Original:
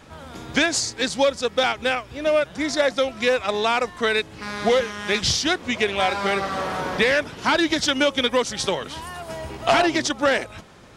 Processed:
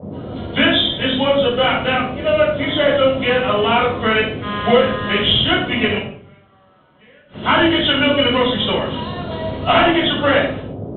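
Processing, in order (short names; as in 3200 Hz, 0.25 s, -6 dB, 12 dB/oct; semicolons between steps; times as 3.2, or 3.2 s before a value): nonlinear frequency compression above 2800 Hz 4:1; expander -32 dBFS; band noise 70–540 Hz -35 dBFS; 5.97–7.44 flipped gate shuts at -18 dBFS, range -34 dB; shoebox room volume 690 m³, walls furnished, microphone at 7 m; gain -4 dB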